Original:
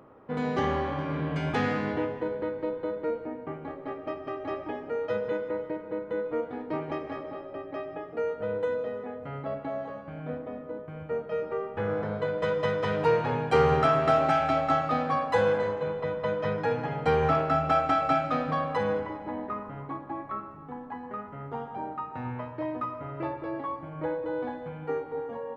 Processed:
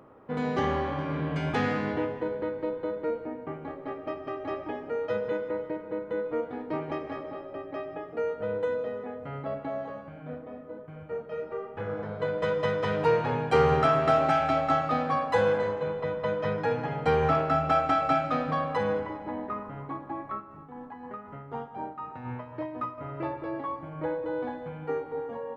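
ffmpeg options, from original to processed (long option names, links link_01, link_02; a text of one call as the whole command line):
ffmpeg -i in.wav -filter_complex "[0:a]asplit=3[link_01][link_02][link_03];[link_01]afade=type=out:start_time=10.07:duration=0.02[link_04];[link_02]flanger=delay=6.6:depth=7.3:regen=-52:speed=1.1:shape=triangular,afade=type=in:start_time=10.07:duration=0.02,afade=type=out:start_time=12.19:duration=0.02[link_05];[link_03]afade=type=in:start_time=12.19:duration=0.02[link_06];[link_04][link_05][link_06]amix=inputs=3:normalize=0,asettb=1/sr,asplit=3[link_07][link_08][link_09];[link_07]atrim=end=20.334[link_10];[link_08]atrim=start=20.33:end=22.98,asetpts=PTS-STARTPTS,afade=type=in:duration=0.004:curve=qsin,afade=type=out:start_time=2.646:duration=0.004:curve=qsin,tremolo=f=4:d=0.52[link_11];[link_09]atrim=start=22.976[link_12];[link_10][link_11]acrossfade=duration=0.004:curve1=hsin:curve2=qsin[link_13];[link_13][link_12]acrossfade=duration=0.004:curve1=qsin:curve2=hsin" out.wav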